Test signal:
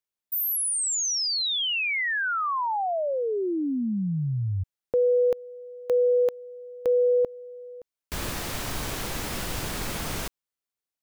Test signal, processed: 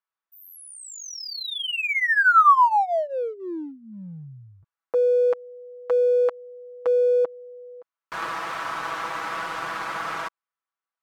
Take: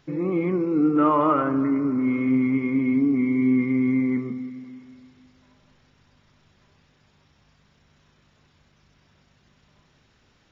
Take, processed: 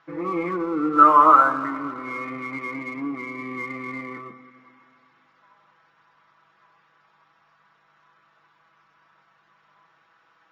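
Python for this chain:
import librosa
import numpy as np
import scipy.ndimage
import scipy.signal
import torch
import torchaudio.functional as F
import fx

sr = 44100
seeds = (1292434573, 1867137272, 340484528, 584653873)

p1 = fx.bandpass_q(x, sr, hz=1200.0, q=2.4)
p2 = p1 + 0.7 * np.pad(p1, (int(6.1 * sr / 1000.0), 0))[:len(p1)]
p3 = np.sign(p2) * np.maximum(np.abs(p2) - 10.0 ** (-46.0 / 20.0), 0.0)
p4 = p2 + (p3 * 10.0 ** (-9.5 / 20.0))
y = p4 * 10.0 ** (9.0 / 20.0)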